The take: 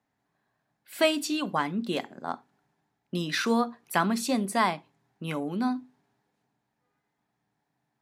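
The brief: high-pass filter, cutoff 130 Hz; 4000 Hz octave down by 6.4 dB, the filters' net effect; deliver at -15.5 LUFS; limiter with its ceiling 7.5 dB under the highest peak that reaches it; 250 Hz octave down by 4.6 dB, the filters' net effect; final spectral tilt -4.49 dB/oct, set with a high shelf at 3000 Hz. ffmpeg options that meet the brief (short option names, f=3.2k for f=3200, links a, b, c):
-af "highpass=130,equalizer=f=250:t=o:g=-5,highshelf=f=3k:g=-4,equalizer=f=4k:t=o:g=-5.5,volume=18dB,alimiter=limit=-1.5dB:level=0:latency=1"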